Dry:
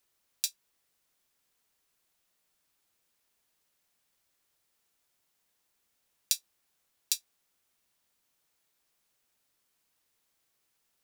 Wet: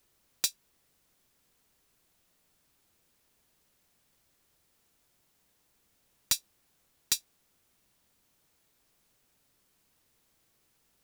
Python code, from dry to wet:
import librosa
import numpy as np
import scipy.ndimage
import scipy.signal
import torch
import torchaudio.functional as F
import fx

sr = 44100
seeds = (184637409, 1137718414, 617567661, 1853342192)

y = fx.low_shelf(x, sr, hz=420.0, db=10.0)
y = 10.0 ** (-19.5 / 20.0) * (np.abs((y / 10.0 ** (-19.5 / 20.0) + 3.0) % 4.0 - 2.0) - 1.0)
y = F.gain(torch.from_numpy(y), 4.5).numpy()